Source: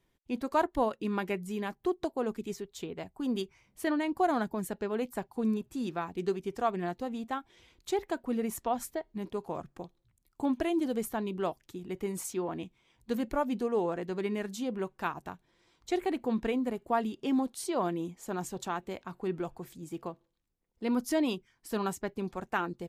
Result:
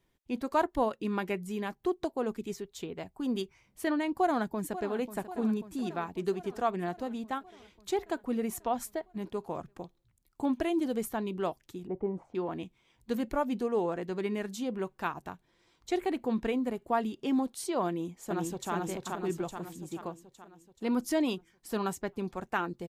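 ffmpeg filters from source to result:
-filter_complex "[0:a]asplit=2[a][b];[b]afade=t=in:st=4.1:d=0.01,afade=t=out:st=4.97:d=0.01,aecho=0:1:540|1080|1620|2160|2700|3240|3780|4320|4860:0.223872|0.15671|0.109697|0.0767881|0.0537517|0.0376262|0.0263383|0.0184368|0.0129058[c];[a][c]amix=inputs=2:normalize=0,asettb=1/sr,asplit=3[d][e][f];[d]atrim=end=11.874[g];[e]atrim=start=11.87:end=12.35,asetpts=PTS-STARTPTS,afade=t=in:d=0.004:c=qsin,afade=t=out:st=0.476:d=0.004:c=qsin,lowpass=f=770:t=q:w=2.2[h];[f]atrim=start=12.346[i];[g][h]acrossfade=d=0.004:c1=hsin:c2=qsin[j];[j][i]acrossfade=d=0.004:c1=qsin:c2=hsin,asplit=2[k][l];[l]afade=t=in:st=17.87:d=0.01,afade=t=out:st=18.72:d=0.01,aecho=0:1:430|860|1290|1720|2150|2580|3010|3440:0.841395|0.462767|0.254522|0.139987|0.0769929|0.0423461|0.0232904|0.0128097[m];[k][m]amix=inputs=2:normalize=0"

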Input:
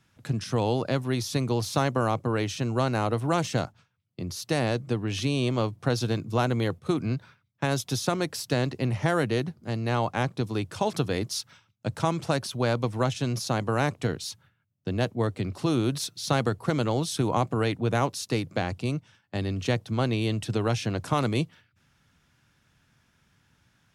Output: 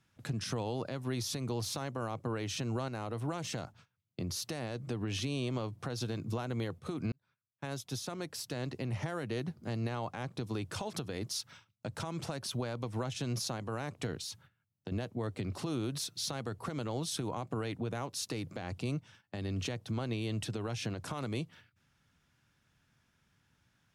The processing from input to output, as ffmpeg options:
-filter_complex "[0:a]asettb=1/sr,asplit=3[a][b][c];[a]atrim=end=2.884[d];[b]atrim=start=2.88:end=5.01,asetpts=PTS-STARTPTS,afade=t=in:d=0.004:c=qsin,afade=t=out:st=2.126:d=0.004:c=qsin,acompressor=threshold=-34dB:ratio=2:attack=3.2:release=140:knee=1:detection=peak[e];[c]atrim=start=5.006[f];[d][e]acrossfade=d=0.004:c1=hsin:c2=qsin[g];[g][f]acrossfade=d=0.004:c1=qsin:c2=hsin,asettb=1/sr,asplit=3[h][i][j];[h]atrim=end=14.214[k];[i]atrim=start=14.21:end=14.92,asetpts=PTS-STARTPTS,afade=t=in:d=0.004:c=qsin,afade=t=out:st=0.706:d=0.004:c=qsin,acompressor=threshold=-37dB:ratio=6:attack=3.2:release=140:knee=1:detection=peak[l];[j]atrim=start=14.916[m];[k][l]acrossfade=d=0.004:c1=hsin:c2=qsin[n];[n][m]acrossfade=d=0.004:c1=qsin:c2=hsin,asplit=2[o][p];[o]atrim=end=7.12,asetpts=PTS-STARTPTS,afade=t=out:st=7.116:d=0.004:c=hsin[q];[p]atrim=start=7.12,asetpts=PTS-STARTPTS,afade=t=in:d=2.57[r];[q][r]concat=n=2:v=0:a=1,agate=range=-7dB:threshold=-57dB:ratio=16:detection=peak,acompressor=threshold=-27dB:ratio=6,alimiter=level_in=2.5dB:limit=-24dB:level=0:latency=1:release=197,volume=-2.5dB"

